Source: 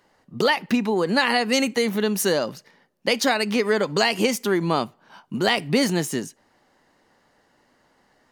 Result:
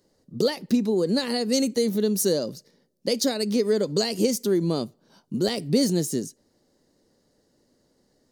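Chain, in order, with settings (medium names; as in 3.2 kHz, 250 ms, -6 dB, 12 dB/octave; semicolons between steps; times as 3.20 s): high-order bell 1.5 kHz -15 dB 2.4 oct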